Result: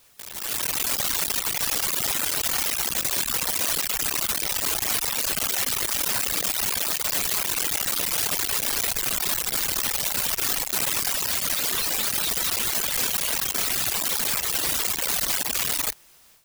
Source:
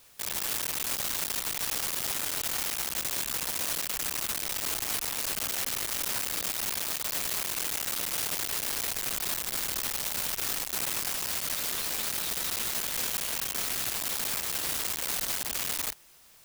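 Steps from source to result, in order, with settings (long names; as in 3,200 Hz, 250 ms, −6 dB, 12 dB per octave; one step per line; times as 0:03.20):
reverb reduction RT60 1.7 s
brickwall limiter −30 dBFS, peak gain reduction 8 dB
automatic gain control gain up to 15 dB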